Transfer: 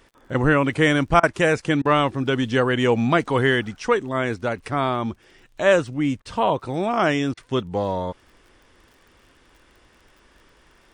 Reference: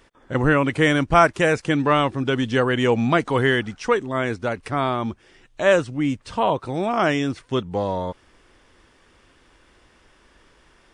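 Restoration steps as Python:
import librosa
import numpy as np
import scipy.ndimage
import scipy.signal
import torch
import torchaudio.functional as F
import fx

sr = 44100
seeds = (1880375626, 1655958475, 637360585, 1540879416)

y = fx.fix_declick_ar(x, sr, threshold=6.5)
y = fx.fix_interpolate(y, sr, at_s=(1.2, 1.82, 6.22, 7.34), length_ms=31.0)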